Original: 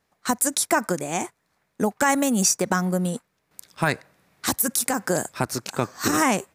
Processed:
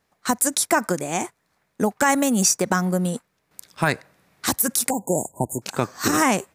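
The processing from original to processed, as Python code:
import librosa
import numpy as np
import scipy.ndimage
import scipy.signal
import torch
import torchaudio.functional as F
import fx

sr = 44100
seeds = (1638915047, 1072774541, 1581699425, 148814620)

y = fx.brickwall_bandstop(x, sr, low_hz=1000.0, high_hz=6600.0, at=(4.9, 5.62))
y = F.gain(torch.from_numpy(y), 1.5).numpy()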